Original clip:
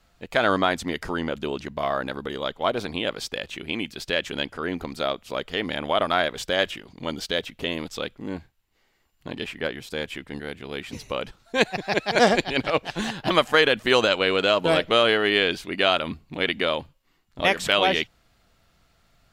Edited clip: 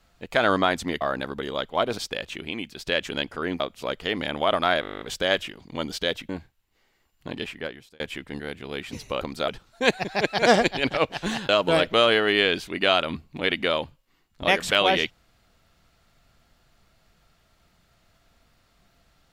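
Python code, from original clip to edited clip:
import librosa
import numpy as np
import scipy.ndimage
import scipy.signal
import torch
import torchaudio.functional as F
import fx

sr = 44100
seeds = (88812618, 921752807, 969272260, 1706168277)

y = fx.edit(x, sr, fx.cut(start_s=1.01, length_s=0.87),
    fx.cut(start_s=2.85, length_s=0.34),
    fx.clip_gain(start_s=3.69, length_s=0.38, db=-3.5),
    fx.move(start_s=4.81, length_s=0.27, to_s=11.21),
    fx.stutter(start_s=6.29, slice_s=0.02, count=11),
    fx.cut(start_s=7.57, length_s=0.72),
    fx.fade_out_span(start_s=9.39, length_s=0.61),
    fx.cut(start_s=13.22, length_s=1.24), tone=tone)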